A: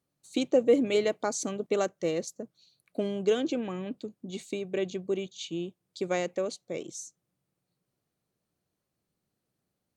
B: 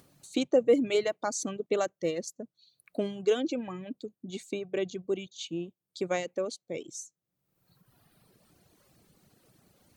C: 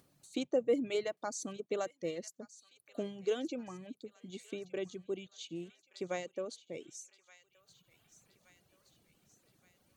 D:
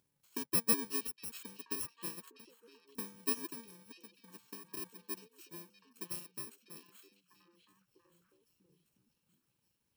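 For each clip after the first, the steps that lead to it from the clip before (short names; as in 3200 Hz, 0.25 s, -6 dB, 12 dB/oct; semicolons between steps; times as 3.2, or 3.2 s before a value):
reverb removal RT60 1.4 s; upward compressor, threshold -45 dBFS
thin delay 1.172 s, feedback 53%, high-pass 1500 Hz, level -15 dB; gain -7.5 dB
FFT order left unsorted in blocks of 64 samples; delay with a stepping band-pass 0.647 s, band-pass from 3300 Hz, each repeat -1.4 oct, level -4 dB; upward expander 1.5:1, over -47 dBFS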